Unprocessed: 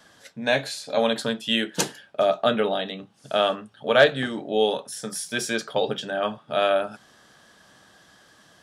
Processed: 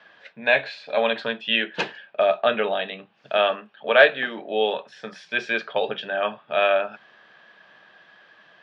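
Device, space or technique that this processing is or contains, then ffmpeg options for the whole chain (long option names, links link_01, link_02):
kitchen radio: -filter_complex "[0:a]asettb=1/sr,asplit=3[link_01][link_02][link_03];[link_01]atrim=end=3.374[link_04];[link_02]atrim=start=3.37:end=4.73,asetpts=PTS-STARTPTS,afade=type=in:duration=0.004:curve=qsin,afade=type=out:start_time=1.356:duration=0.004:curve=qsin,highpass=frequency=160:width=0.5412,highpass=frequency=160:width=1.3066[link_05];[link_03]atrim=start=4.726[link_06];[link_04][link_05]acrossfade=duration=0.004:curve1=hsin:curve2=qsin[link_07];[link_07][link_06]acrossfade=duration=0.004:curve1=qsin:curve2=hsin,highpass=210,equalizer=frequency=270:width_type=q:width=4:gain=-8,equalizer=frequency=640:width_type=q:width=4:gain=3,equalizer=frequency=1000:width_type=q:width=4:gain=3,equalizer=frequency=1700:width_type=q:width=4:gain=6,equalizer=frequency=2500:width_type=q:width=4:gain=9,lowpass=frequency=3800:width=0.5412,lowpass=frequency=3800:width=1.3066,volume=-1dB"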